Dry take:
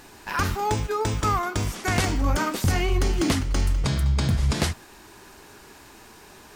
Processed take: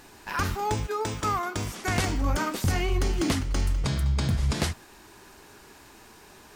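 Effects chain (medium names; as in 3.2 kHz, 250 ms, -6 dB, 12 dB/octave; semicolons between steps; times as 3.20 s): 0.86–1.77 s: high-pass 200 Hz -> 83 Hz 6 dB/octave; trim -3 dB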